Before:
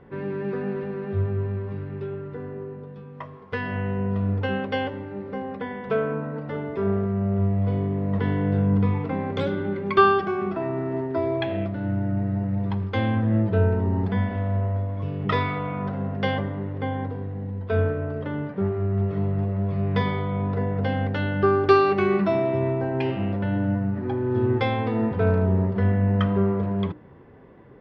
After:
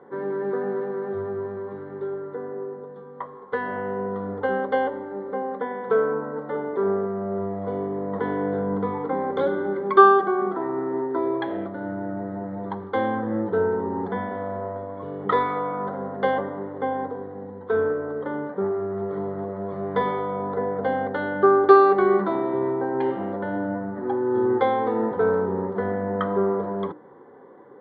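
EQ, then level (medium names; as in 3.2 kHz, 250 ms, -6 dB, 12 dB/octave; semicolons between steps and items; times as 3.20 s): boxcar filter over 17 samples; high-pass 420 Hz 12 dB/octave; Butterworth band-stop 640 Hz, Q 7.3; +7.5 dB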